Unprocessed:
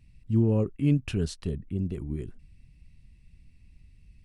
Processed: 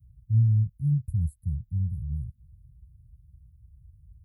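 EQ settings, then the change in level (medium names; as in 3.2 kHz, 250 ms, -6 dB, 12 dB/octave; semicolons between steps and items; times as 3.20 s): high-pass 50 Hz 24 dB/octave; inverse Chebyshev band-stop 330–6000 Hz, stop band 50 dB; +6.0 dB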